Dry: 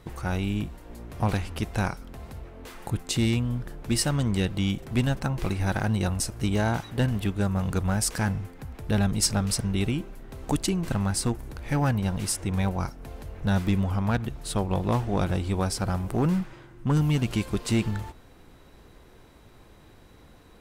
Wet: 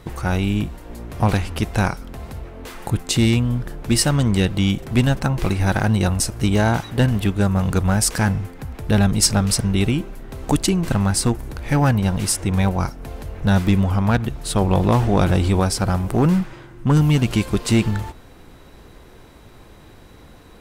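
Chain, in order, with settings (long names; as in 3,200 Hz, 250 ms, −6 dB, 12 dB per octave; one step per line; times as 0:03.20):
0:14.61–0:15.60: envelope flattener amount 50%
level +7.5 dB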